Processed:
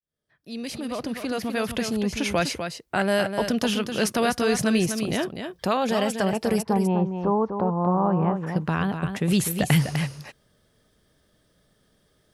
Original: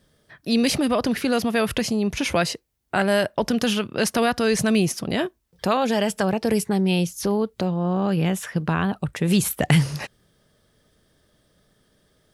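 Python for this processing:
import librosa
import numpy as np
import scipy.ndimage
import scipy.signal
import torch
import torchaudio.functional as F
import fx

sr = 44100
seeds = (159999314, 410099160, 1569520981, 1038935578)

p1 = fx.fade_in_head(x, sr, length_s=2.18)
p2 = fx.lowpass_res(p1, sr, hz=1000.0, q=3.8, at=(6.61, 8.46), fade=0.02)
p3 = p2 + fx.echo_single(p2, sr, ms=250, db=-7.5, dry=0)
y = F.gain(torch.from_numpy(p3), -2.5).numpy()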